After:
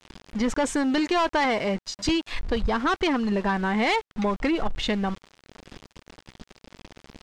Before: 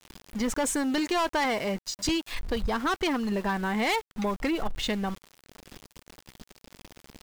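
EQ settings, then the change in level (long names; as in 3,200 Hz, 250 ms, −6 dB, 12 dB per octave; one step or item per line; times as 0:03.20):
high-frequency loss of the air 81 metres
+4.0 dB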